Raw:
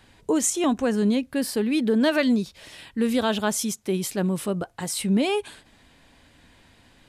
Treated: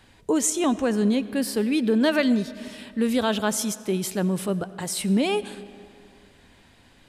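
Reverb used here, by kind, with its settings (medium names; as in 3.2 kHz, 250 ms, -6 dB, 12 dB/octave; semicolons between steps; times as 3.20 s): algorithmic reverb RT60 2.4 s, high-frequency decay 0.65×, pre-delay 50 ms, DRR 16 dB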